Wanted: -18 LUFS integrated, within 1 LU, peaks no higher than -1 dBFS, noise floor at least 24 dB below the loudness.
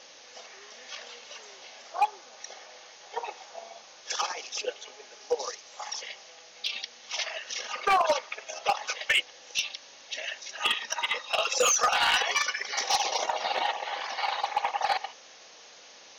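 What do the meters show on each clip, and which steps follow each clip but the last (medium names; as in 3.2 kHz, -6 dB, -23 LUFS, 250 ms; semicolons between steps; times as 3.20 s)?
clipped samples 0.3%; clipping level -17.5 dBFS; noise floor -51 dBFS; noise floor target -53 dBFS; loudness -28.5 LUFS; peak level -17.5 dBFS; loudness target -18.0 LUFS
-> clip repair -17.5 dBFS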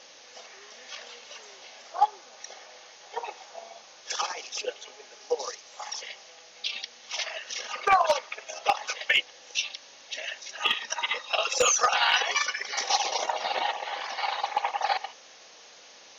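clipped samples 0.0%; noise floor -51 dBFS; noise floor target -52 dBFS
-> noise reduction 6 dB, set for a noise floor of -51 dBFS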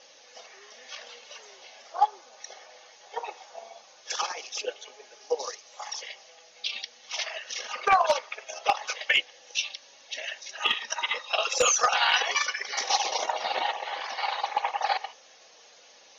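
noise floor -55 dBFS; loudness -28.0 LUFS; peak level -8.5 dBFS; loudness target -18.0 LUFS
-> trim +10 dB; peak limiter -1 dBFS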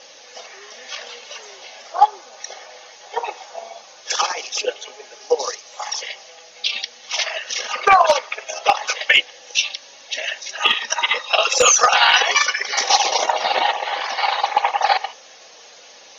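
loudness -18.5 LUFS; peak level -1.0 dBFS; noise floor -45 dBFS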